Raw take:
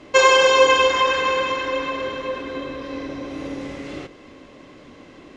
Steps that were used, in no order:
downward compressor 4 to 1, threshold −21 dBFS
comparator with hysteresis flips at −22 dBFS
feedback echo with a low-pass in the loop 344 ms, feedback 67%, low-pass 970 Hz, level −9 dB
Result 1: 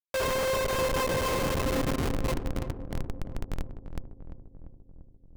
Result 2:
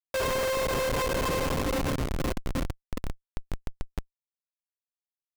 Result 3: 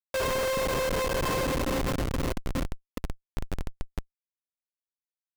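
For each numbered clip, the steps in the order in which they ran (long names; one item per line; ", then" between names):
downward compressor, then comparator with hysteresis, then feedback echo with a low-pass in the loop
downward compressor, then feedback echo with a low-pass in the loop, then comparator with hysteresis
feedback echo with a low-pass in the loop, then downward compressor, then comparator with hysteresis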